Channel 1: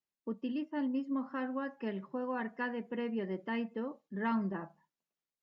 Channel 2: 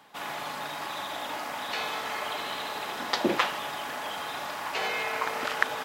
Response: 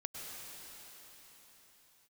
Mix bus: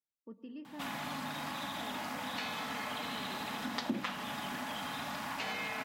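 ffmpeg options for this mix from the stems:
-filter_complex "[0:a]alimiter=level_in=5dB:limit=-24dB:level=0:latency=1:release=151,volume=-5dB,volume=-12.5dB,asplit=2[a][b];[b]volume=-3.5dB[c];[1:a]lowshelf=f=310:t=q:w=3:g=7,bandreject=f=48.54:t=h:w=4,bandreject=f=97.08:t=h:w=4,bandreject=f=145.62:t=h:w=4,bandreject=f=194.16:t=h:w=4,bandreject=f=242.7:t=h:w=4,bandreject=f=291.24:t=h:w=4,bandreject=f=339.78:t=h:w=4,bandreject=f=388.32:t=h:w=4,bandreject=f=436.86:t=h:w=4,bandreject=f=485.4:t=h:w=4,bandreject=f=533.94:t=h:w=4,bandreject=f=582.48:t=h:w=4,bandreject=f=631.02:t=h:w=4,bandreject=f=679.56:t=h:w=4,bandreject=f=728.1:t=h:w=4,bandreject=f=776.64:t=h:w=4,bandreject=f=825.18:t=h:w=4,bandreject=f=873.72:t=h:w=4,bandreject=f=922.26:t=h:w=4,bandreject=f=970.8:t=h:w=4,bandreject=f=1.01934k:t=h:w=4,bandreject=f=1.06788k:t=h:w=4,bandreject=f=1.11642k:t=h:w=4,bandreject=f=1.16496k:t=h:w=4,bandreject=f=1.2135k:t=h:w=4,bandreject=f=1.26204k:t=h:w=4,bandreject=f=1.31058k:t=h:w=4,bandreject=f=1.35912k:t=h:w=4,bandreject=f=1.40766k:t=h:w=4,bandreject=f=1.4562k:t=h:w=4,bandreject=f=1.50474k:t=h:w=4,bandreject=f=1.55328k:t=h:w=4,bandreject=f=1.60182k:t=h:w=4,bandreject=f=1.65036k:t=h:w=4,adelay=650,volume=1dB[d];[2:a]atrim=start_sample=2205[e];[c][e]afir=irnorm=-1:irlink=0[f];[a][d][f]amix=inputs=3:normalize=0,acompressor=threshold=-39dB:ratio=2.5"

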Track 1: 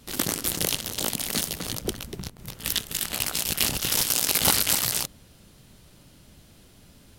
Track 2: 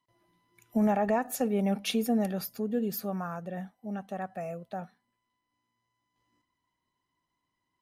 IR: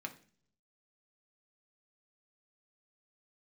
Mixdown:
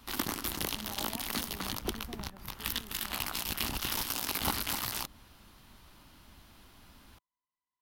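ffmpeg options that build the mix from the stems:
-filter_complex "[0:a]equalizer=f=170:w=4.3:g=-4.5,volume=-1dB[a];[1:a]volume=-18dB[b];[a][b]amix=inputs=2:normalize=0,equalizer=f=125:t=o:w=1:g=-8,equalizer=f=500:t=o:w=1:g=-9,equalizer=f=1k:t=o:w=1:g=8,equalizer=f=8k:t=o:w=1:g=-8,acrossover=split=500[c][d];[d]acompressor=threshold=-32dB:ratio=3[e];[c][e]amix=inputs=2:normalize=0"

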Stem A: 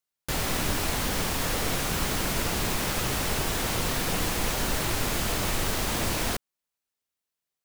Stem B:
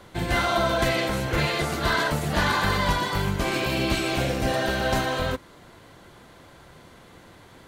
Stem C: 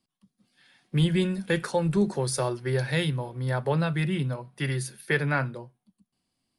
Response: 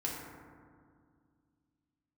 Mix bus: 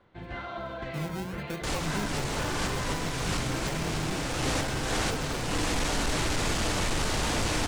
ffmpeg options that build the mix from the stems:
-filter_complex "[0:a]lowpass=f=8.8k:w=0.5412,lowpass=f=8.8k:w=1.3066,asoftclip=type=tanh:threshold=-26dB,adelay=1350,volume=1dB,asplit=2[a][b];[b]volume=-10dB[c];[1:a]lowpass=2.8k,volume=-14dB[d];[2:a]acompressor=threshold=-45dB:ratio=1.5,acrusher=samples=30:mix=1:aa=0.000001:lfo=1:lforange=18:lforate=1.1,volume=-3dB,asplit=2[e][f];[f]apad=whole_len=396541[g];[a][g]sidechaincompress=threshold=-44dB:ratio=8:attack=47:release=184[h];[3:a]atrim=start_sample=2205[i];[c][i]afir=irnorm=-1:irlink=0[j];[h][d][e][j]amix=inputs=4:normalize=0"

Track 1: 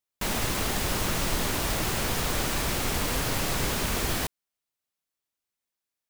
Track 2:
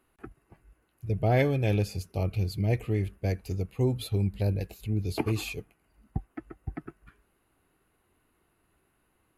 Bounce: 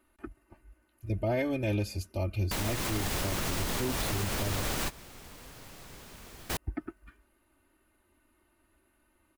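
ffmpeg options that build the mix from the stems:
-filter_complex "[0:a]adelay=2300,volume=-0.5dB[a];[1:a]aecho=1:1:3.3:0.93,volume=-2dB,asplit=3[b][c][d];[b]atrim=end=4.83,asetpts=PTS-STARTPTS,afade=t=out:st=4.826:d=0.004:c=hsin[e];[c]atrim=start=4.83:end=6.49,asetpts=PTS-STARTPTS,volume=0[f];[d]atrim=start=6.49,asetpts=PTS-STARTPTS,afade=t=in:d=0.004:c=hsin[g];[e][f][g]concat=n=3:v=0:a=1,asplit=2[h][i];[i]apad=whole_len=370363[j];[a][j]sidechaingate=range=-21dB:threshold=-57dB:ratio=16:detection=peak[k];[k][h]amix=inputs=2:normalize=0,alimiter=limit=-21.5dB:level=0:latency=1:release=130"

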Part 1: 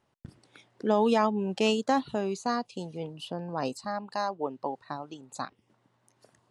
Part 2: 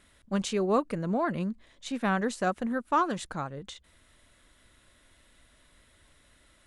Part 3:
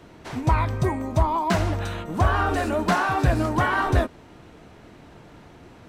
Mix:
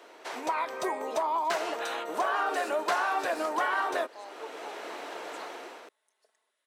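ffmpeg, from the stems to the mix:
-filter_complex "[0:a]aecho=1:1:4.6:0.87,volume=-12dB[a];[1:a]adelay=1000,volume=-17dB[b];[2:a]dynaudnorm=f=140:g=7:m=12.5dB,volume=0dB[c];[a][b][c]amix=inputs=3:normalize=0,highpass=f=420:w=0.5412,highpass=f=420:w=1.3066,acompressor=threshold=-35dB:ratio=2"

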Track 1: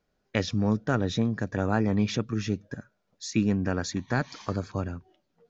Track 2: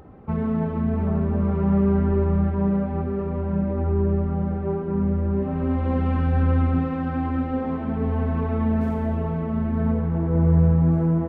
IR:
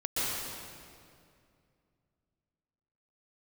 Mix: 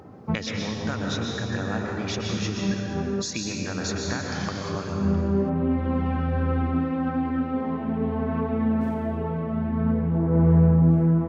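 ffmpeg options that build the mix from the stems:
-filter_complex "[0:a]tiltshelf=f=970:g=-5,acompressor=threshold=-33dB:ratio=4,volume=0dB,asplit=3[a][b][c];[b]volume=-3.5dB[d];[1:a]highpass=f=93:w=0.5412,highpass=f=93:w=1.3066,aphaser=in_gain=1:out_gain=1:delay=4.9:decay=0.27:speed=0.19:type=sinusoidal,volume=-1dB[e];[c]apad=whole_len=497610[f];[e][f]sidechaincompress=threshold=-47dB:ratio=8:attack=16:release=202[g];[2:a]atrim=start_sample=2205[h];[d][h]afir=irnorm=-1:irlink=0[i];[a][g][i]amix=inputs=3:normalize=0"

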